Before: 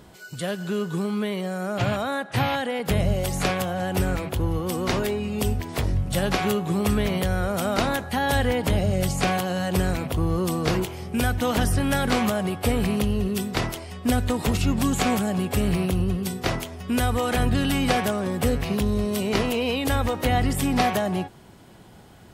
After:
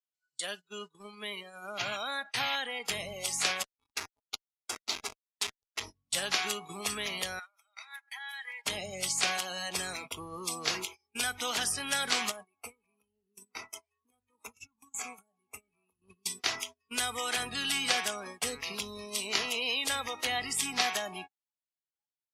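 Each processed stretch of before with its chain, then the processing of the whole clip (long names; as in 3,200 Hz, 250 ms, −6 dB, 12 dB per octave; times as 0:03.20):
0:03.63–0:05.81: bass and treble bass −11 dB, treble +12 dB + comparator with hysteresis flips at −19 dBFS + auto-filter bell 2 Hz 540–4,600 Hz +6 dB
0:07.39–0:08.65: Bessel high-pass filter 870 Hz, order 6 + downward compressor 8 to 1, threshold −36 dBFS + parametric band 2,000 Hz +7 dB 0.66 octaves
0:12.31–0:16.02: parametric band 4,200 Hz −6 dB 0.99 octaves + downward compressor 4 to 1, threshold −28 dBFS
whole clip: meter weighting curve ITU-R 468; noise reduction from a noise print of the clip's start 20 dB; noise gate −34 dBFS, range −28 dB; level −8.5 dB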